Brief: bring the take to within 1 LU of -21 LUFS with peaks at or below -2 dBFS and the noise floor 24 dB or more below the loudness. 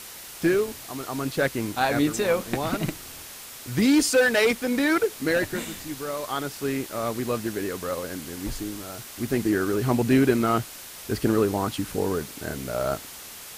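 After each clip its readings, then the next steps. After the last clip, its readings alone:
noise floor -41 dBFS; noise floor target -50 dBFS; loudness -25.5 LUFS; peak level -7.5 dBFS; loudness target -21.0 LUFS
-> noise reduction 9 dB, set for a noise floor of -41 dBFS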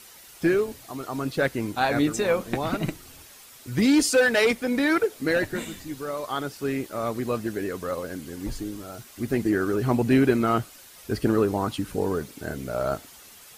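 noise floor -48 dBFS; noise floor target -50 dBFS
-> noise reduction 6 dB, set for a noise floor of -48 dBFS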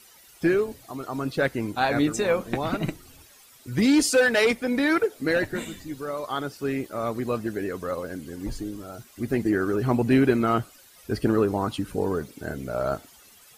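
noise floor -53 dBFS; loudness -25.5 LUFS; peak level -7.5 dBFS; loudness target -21.0 LUFS
-> trim +4.5 dB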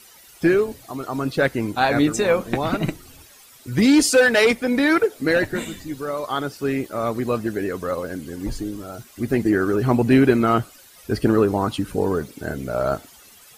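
loudness -21.0 LUFS; peak level -3.0 dBFS; noise floor -48 dBFS

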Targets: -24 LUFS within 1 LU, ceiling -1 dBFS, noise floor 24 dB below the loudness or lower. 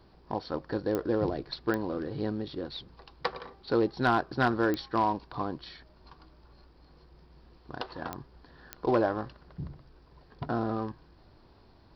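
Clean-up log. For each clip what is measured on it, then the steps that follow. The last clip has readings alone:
clicks found 5; loudness -31.5 LUFS; peak level -14.5 dBFS; loudness target -24.0 LUFS
-> de-click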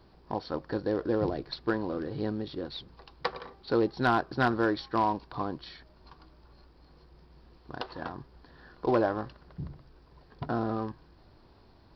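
clicks found 0; loudness -31.5 LUFS; peak level -16.5 dBFS; loudness target -24.0 LUFS
-> trim +7.5 dB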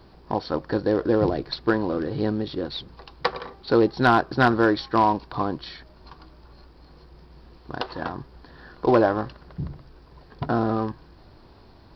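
loudness -24.0 LUFS; peak level -9.0 dBFS; noise floor -51 dBFS

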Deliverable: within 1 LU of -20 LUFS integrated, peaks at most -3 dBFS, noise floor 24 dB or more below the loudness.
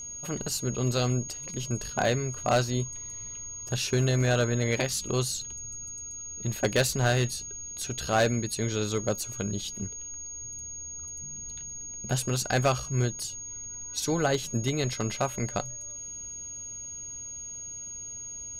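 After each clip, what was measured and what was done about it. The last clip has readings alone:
clipped samples 0.3%; clipping level -17.0 dBFS; steady tone 6.6 kHz; tone level -37 dBFS; loudness -30.0 LUFS; peak level -17.0 dBFS; loudness target -20.0 LUFS
-> clip repair -17 dBFS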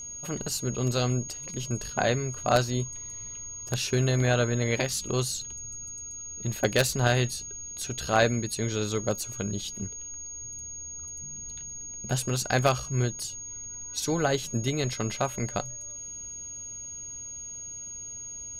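clipped samples 0.0%; steady tone 6.6 kHz; tone level -37 dBFS
-> band-stop 6.6 kHz, Q 30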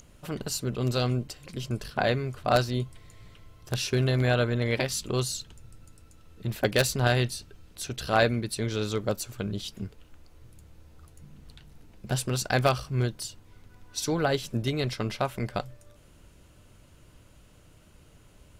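steady tone not found; loudness -28.5 LUFS; peak level -8.0 dBFS; loudness target -20.0 LUFS
-> trim +8.5 dB; peak limiter -3 dBFS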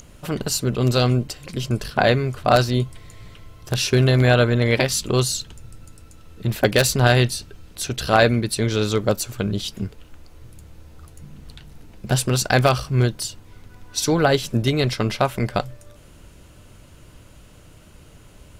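loudness -20.5 LUFS; peak level -3.0 dBFS; noise floor -47 dBFS

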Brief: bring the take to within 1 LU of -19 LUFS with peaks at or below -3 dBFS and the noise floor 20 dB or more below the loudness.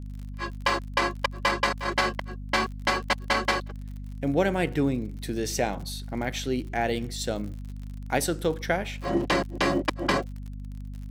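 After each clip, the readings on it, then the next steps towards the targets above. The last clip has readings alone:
tick rate 49 per s; hum 50 Hz; highest harmonic 250 Hz; hum level -34 dBFS; loudness -27.5 LUFS; peak level -10.0 dBFS; loudness target -19.0 LUFS
-> de-click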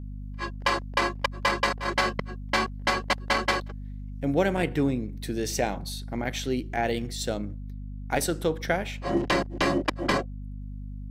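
tick rate 0.090 per s; hum 50 Hz; highest harmonic 250 Hz; hum level -34 dBFS
-> hum notches 50/100/150/200/250 Hz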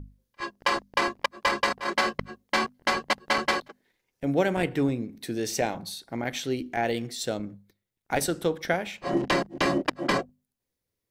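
hum not found; loudness -28.0 LUFS; peak level -10.5 dBFS; loudness target -19.0 LUFS
-> trim +9 dB; peak limiter -3 dBFS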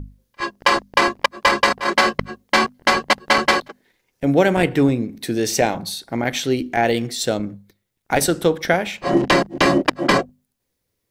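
loudness -19.0 LUFS; peak level -3.0 dBFS; noise floor -76 dBFS

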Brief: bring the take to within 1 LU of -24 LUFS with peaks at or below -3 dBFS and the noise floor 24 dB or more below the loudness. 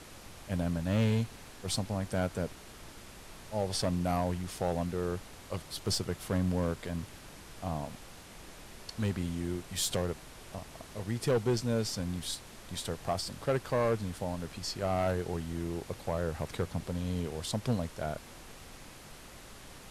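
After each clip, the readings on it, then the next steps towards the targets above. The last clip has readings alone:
clipped samples 0.7%; clipping level -22.5 dBFS; noise floor -51 dBFS; noise floor target -58 dBFS; loudness -34.0 LUFS; peak level -22.5 dBFS; loudness target -24.0 LUFS
-> clip repair -22.5 dBFS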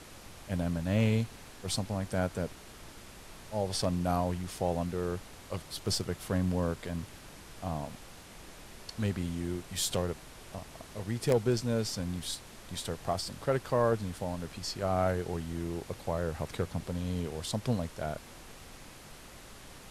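clipped samples 0.0%; noise floor -51 dBFS; noise floor target -58 dBFS
-> noise print and reduce 7 dB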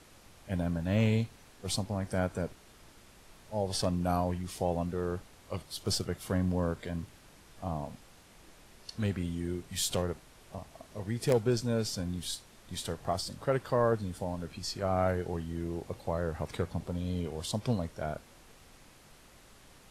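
noise floor -57 dBFS; noise floor target -58 dBFS
-> noise print and reduce 6 dB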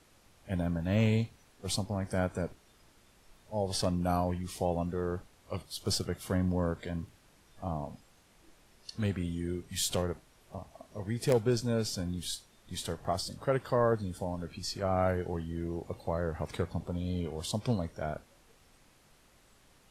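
noise floor -63 dBFS; loudness -33.5 LUFS; peak level -13.5 dBFS; loudness target -24.0 LUFS
-> trim +9.5 dB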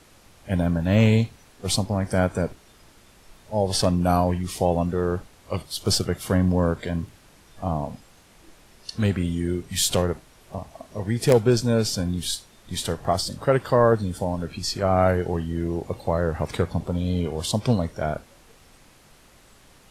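loudness -24.0 LUFS; peak level -4.0 dBFS; noise floor -54 dBFS

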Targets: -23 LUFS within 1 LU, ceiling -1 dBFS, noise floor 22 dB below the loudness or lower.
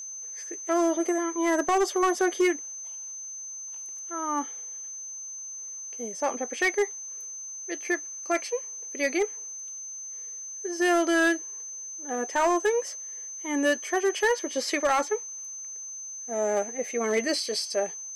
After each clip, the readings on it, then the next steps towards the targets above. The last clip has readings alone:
clipped samples 0.7%; clipping level -17.5 dBFS; steady tone 6.2 kHz; tone level -36 dBFS; loudness -28.5 LUFS; peak level -17.5 dBFS; loudness target -23.0 LUFS
-> clip repair -17.5 dBFS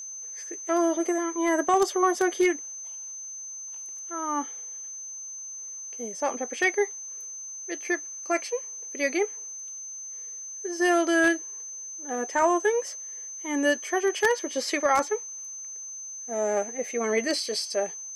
clipped samples 0.0%; steady tone 6.2 kHz; tone level -36 dBFS
-> band-stop 6.2 kHz, Q 30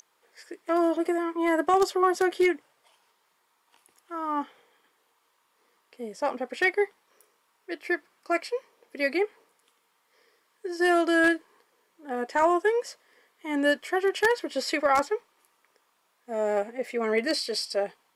steady tone not found; loudness -26.5 LUFS; peak level -8.5 dBFS; loudness target -23.0 LUFS
-> trim +3.5 dB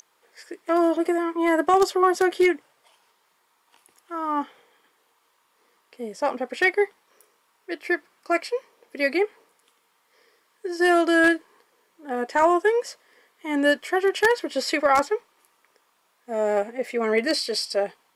loudness -23.0 LUFS; peak level -5.0 dBFS; noise floor -67 dBFS

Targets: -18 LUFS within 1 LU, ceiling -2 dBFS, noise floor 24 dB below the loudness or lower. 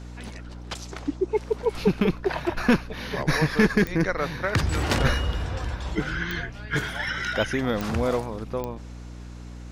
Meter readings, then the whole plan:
clicks found 4; hum 60 Hz; highest harmonic 300 Hz; hum level -37 dBFS; loudness -26.0 LUFS; peak level -7.5 dBFS; loudness target -18.0 LUFS
-> de-click; de-hum 60 Hz, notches 5; trim +8 dB; peak limiter -2 dBFS

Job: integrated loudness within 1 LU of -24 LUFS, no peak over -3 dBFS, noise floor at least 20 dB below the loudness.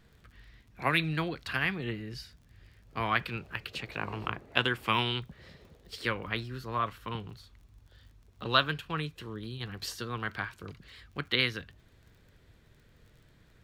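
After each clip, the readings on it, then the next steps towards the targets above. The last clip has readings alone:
tick rate 36 per s; loudness -32.5 LUFS; peak level -6.5 dBFS; loudness target -24.0 LUFS
-> de-click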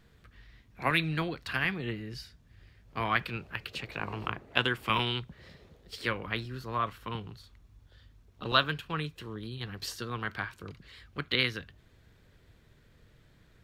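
tick rate 0.073 per s; loudness -32.5 LUFS; peak level -6.5 dBFS; loudness target -24.0 LUFS
-> trim +8.5 dB; peak limiter -3 dBFS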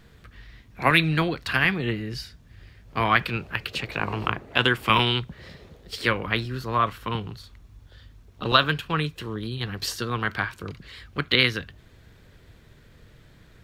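loudness -24.5 LUFS; peak level -3.0 dBFS; noise floor -53 dBFS

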